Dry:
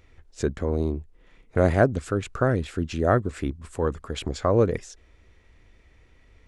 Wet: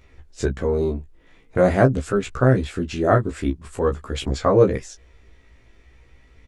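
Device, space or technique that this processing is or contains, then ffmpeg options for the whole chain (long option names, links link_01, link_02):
double-tracked vocal: -filter_complex "[0:a]asplit=2[link_01][link_02];[link_02]adelay=15,volume=-8dB[link_03];[link_01][link_03]amix=inputs=2:normalize=0,flanger=delay=15:depth=3.2:speed=0.45,volume=6dB"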